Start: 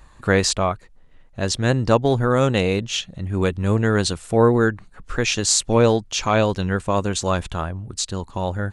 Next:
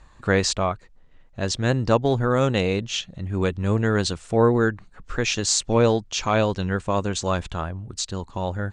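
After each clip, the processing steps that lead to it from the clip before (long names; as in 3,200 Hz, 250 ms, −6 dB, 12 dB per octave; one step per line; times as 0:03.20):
low-pass filter 8,000 Hz 24 dB per octave
level −2.5 dB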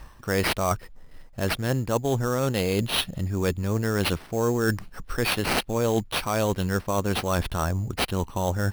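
reversed playback
downward compressor 6 to 1, threshold −29 dBFS, peak gain reduction 15 dB
reversed playback
sample-rate reduction 7,000 Hz, jitter 0%
level +7.5 dB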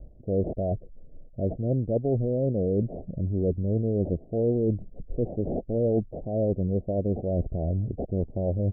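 Butterworth low-pass 670 Hz 72 dB per octave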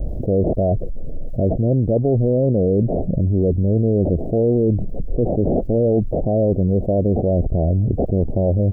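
envelope flattener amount 70%
level +6 dB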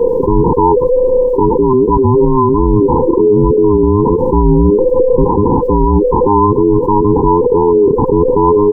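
frequency inversion band by band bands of 500 Hz
boost into a limiter +11.5 dB
level −1 dB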